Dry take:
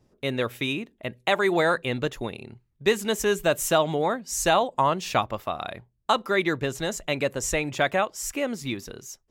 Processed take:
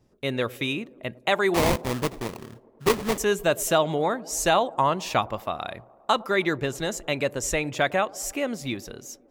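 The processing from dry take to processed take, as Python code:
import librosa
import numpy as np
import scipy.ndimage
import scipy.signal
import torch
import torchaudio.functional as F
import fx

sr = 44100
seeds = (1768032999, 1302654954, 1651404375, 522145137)

p1 = fx.sample_hold(x, sr, seeds[0], rate_hz=1500.0, jitter_pct=20, at=(1.54, 3.18))
y = p1 + fx.echo_wet_bandpass(p1, sr, ms=104, feedback_pct=76, hz=440.0, wet_db=-21.0, dry=0)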